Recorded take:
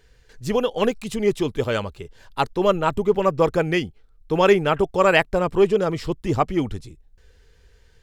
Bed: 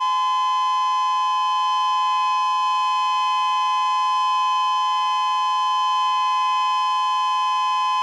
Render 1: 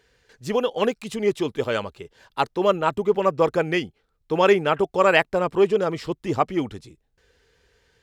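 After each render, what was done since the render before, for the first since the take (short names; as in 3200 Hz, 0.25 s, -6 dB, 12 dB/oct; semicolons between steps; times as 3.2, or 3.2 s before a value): HPF 230 Hz 6 dB/oct; high shelf 6400 Hz -5 dB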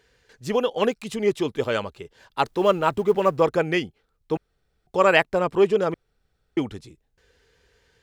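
2.45–3.4 G.711 law mismatch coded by mu; 4.37–4.87 room tone; 5.94–6.57 room tone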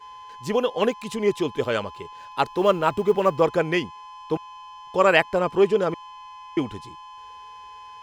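add bed -22 dB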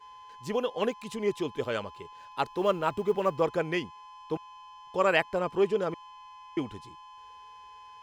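gain -7 dB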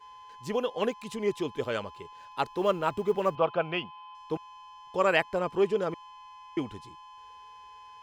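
3.35–4.15 speaker cabinet 130–3600 Hz, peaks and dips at 280 Hz -9 dB, 420 Hz -7 dB, 690 Hz +8 dB, 1300 Hz +7 dB, 1900 Hz -9 dB, 2800 Hz +8 dB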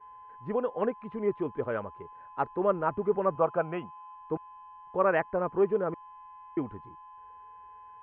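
LPF 1700 Hz 24 dB/oct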